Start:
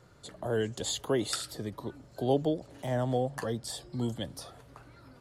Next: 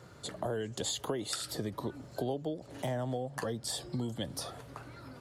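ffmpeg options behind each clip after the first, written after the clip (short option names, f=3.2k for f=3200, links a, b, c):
-af "highpass=70,acompressor=threshold=-37dB:ratio=10,volume=5.5dB"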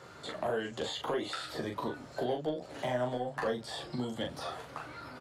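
-filter_complex "[0:a]acrossover=split=3200[a][b];[b]acompressor=threshold=-52dB:ratio=4:attack=1:release=60[c];[a][c]amix=inputs=2:normalize=0,asplit=2[d][e];[e]highpass=f=720:p=1,volume=12dB,asoftclip=type=tanh:threshold=-22dB[f];[d][f]amix=inputs=2:normalize=0,lowpass=f=3.8k:p=1,volume=-6dB,aecho=1:1:13|40:0.562|0.631,volume=-1.5dB"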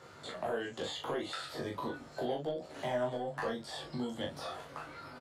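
-filter_complex "[0:a]asplit=2[a][b];[b]adelay=21,volume=-4dB[c];[a][c]amix=inputs=2:normalize=0,volume=-3.5dB"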